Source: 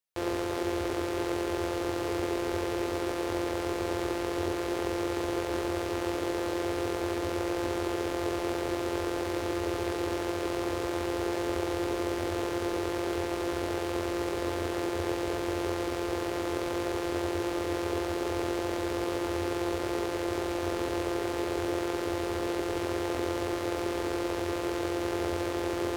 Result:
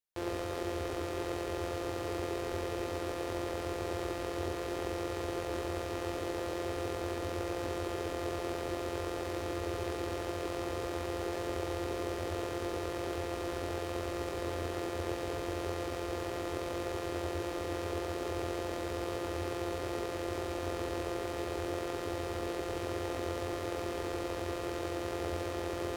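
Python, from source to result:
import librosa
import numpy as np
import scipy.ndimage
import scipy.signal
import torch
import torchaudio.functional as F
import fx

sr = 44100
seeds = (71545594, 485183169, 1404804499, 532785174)

p1 = fx.low_shelf(x, sr, hz=210.0, db=3.0)
p2 = p1 + fx.echo_single(p1, sr, ms=117, db=-8.5, dry=0)
y = p2 * librosa.db_to_amplitude(-5.5)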